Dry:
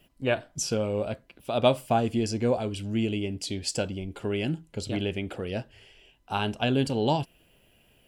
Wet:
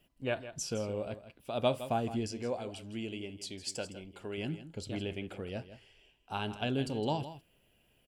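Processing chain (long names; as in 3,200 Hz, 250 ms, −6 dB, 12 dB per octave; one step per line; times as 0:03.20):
0:02.28–0:04.38: low-shelf EQ 270 Hz −8.5 dB
single-tap delay 162 ms −13 dB
level −8 dB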